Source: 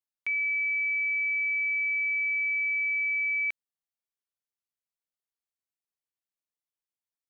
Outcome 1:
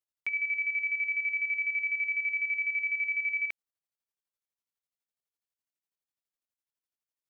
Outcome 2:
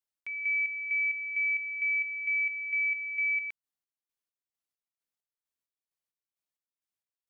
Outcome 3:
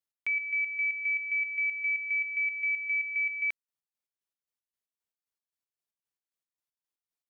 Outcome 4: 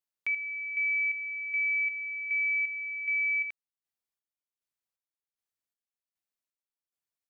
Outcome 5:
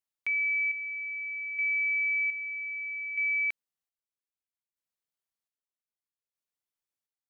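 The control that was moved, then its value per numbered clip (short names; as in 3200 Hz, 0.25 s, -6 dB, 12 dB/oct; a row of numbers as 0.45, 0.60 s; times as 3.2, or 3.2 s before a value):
chopper, rate: 12, 2.2, 3.8, 1.3, 0.63 Hz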